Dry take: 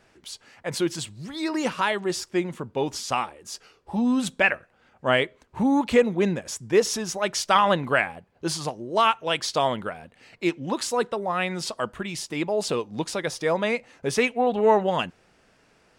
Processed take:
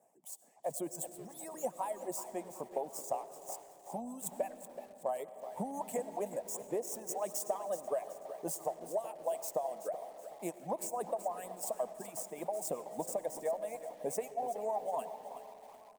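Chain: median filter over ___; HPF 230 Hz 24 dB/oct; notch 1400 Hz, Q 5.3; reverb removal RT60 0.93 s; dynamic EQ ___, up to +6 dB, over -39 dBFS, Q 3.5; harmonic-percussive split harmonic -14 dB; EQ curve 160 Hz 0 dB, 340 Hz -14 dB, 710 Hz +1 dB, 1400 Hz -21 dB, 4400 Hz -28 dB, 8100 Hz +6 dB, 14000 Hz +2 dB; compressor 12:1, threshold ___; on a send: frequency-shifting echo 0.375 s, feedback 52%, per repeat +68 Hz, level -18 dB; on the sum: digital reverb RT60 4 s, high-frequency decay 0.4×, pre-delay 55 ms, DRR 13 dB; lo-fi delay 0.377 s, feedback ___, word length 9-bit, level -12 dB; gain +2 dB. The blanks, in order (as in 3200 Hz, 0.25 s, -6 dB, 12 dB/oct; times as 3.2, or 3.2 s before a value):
5 samples, 640 Hz, -34 dBFS, 35%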